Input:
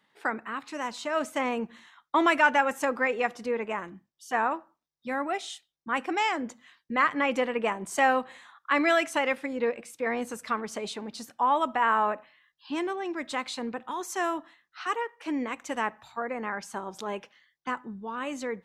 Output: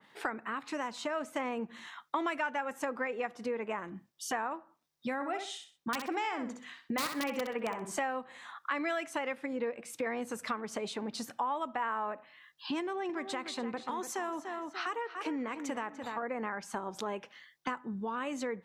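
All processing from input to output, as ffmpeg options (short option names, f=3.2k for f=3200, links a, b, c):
-filter_complex "[0:a]asettb=1/sr,asplit=3[a][b][c];[a]atrim=end=5.144[d];[b]atrim=start=5.14:end=7.98,asetpts=PTS-STARTPTS,afade=t=in:d=0.004:c=qsin,afade=t=out:st=2.836:d=0.004:c=qsin,highshelf=f=7.9k:g=-3.5,aeval=exprs='(mod(6.31*val(0)+1,2)-1)/6.31':c=same,aecho=1:1:64|128|192:0.398|0.0916|0.0211,atrim=end_sample=125244[e];[c]atrim=start=7.976[f];[d][e]acrossfade=d=0.004:c1=hsin:c2=qsin[g];[g][f]acrossfade=d=0.004:c1=qsin:c2=hsin,asettb=1/sr,asplit=3[h][i][j];[h]atrim=end=12.804[k];[i]atrim=start=12.8:end=16.23,asetpts=PTS-STARTPTS,afade=t=in:d=0.004:c=qsin,afade=t=out:st=3.426:d=0.004:c=qsin,acompressor=threshold=-32dB:ratio=2:attack=3.2:release=140:knee=1:detection=peak,asplit=2[l][m];[m]adelay=293,lowpass=f=4.7k:p=1,volume=-10dB,asplit=2[n][o];[o]adelay=293,lowpass=f=4.7k:p=1,volume=0.31,asplit=2[p][q];[q]adelay=293,lowpass=f=4.7k:p=1,volume=0.31[r];[l][n][p][r]amix=inputs=4:normalize=0,atrim=end_sample=151263[s];[j]atrim=start=16.226[t];[k][s]acrossfade=d=0.004:c1=hsin:c2=qsin[u];[u][t]acrossfade=d=0.004:c1=qsin:c2=hsin,highpass=76,acompressor=threshold=-43dB:ratio=4,adynamicequalizer=threshold=0.00141:dfrequency=2500:dqfactor=0.7:tfrequency=2500:tqfactor=0.7:attack=5:release=100:ratio=0.375:range=2.5:mode=cutabove:tftype=highshelf,volume=8dB"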